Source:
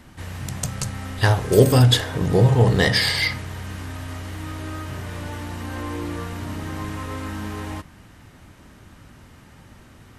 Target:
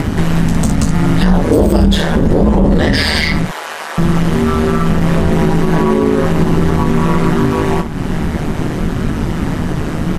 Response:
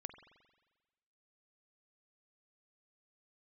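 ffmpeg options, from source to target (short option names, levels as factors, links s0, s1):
-filter_complex "[0:a]acompressor=mode=upward:threshold=0.1:ratio=2.5,flanger=delay=5.6:depth=8.5:regen=-28:speed=0.66:shape=sinusoidal,aeval=exprs='(tanh(3.55*val(0)+0.45)-tanh(0.45))/3.55':c=same,asettb=1/sr,asplit=3[s0][s1][s2];[s0]atrim=end=3.454[s3];[s1]atrim=start=3.45:end=3.98,asetpts=PTS-STARTPTS,afade=t=in:d=0.004:c=qsin,afade=t=out:st=0.526:d=0.004:c=qsin,highpass=f=550:w=0.5412,highpass=f=550:w=1.3066[s4];[s2]atrim=start=3.976[s5];[s3][s4]acrossfade=d=0.004:c1=hsin:c2=qsin[s6];[s6][s5]acrossfade=d=0.004:c1=qsin:c2=hsin,aeval=exprs='0.355*(cos(1*acos(clip(val(0)/0.355,-1,1)))-cos(1*PI/2))+0.0251*(cos(5*acos(clip(val(0)/0.355,-1,1)))-cos(5*PI/2))':c=same,tiltshelf=f=890:g=5,aecho=1:1:20|60:0.335|0.282,aeval=exprs='val(0)*sin(2*PI*77*n/s)':c=same,highshelf=f=11000:g=-5,alimiter=level_in=9.44:limit=0.891:release=50:level=0:latency=1,volume=0.891"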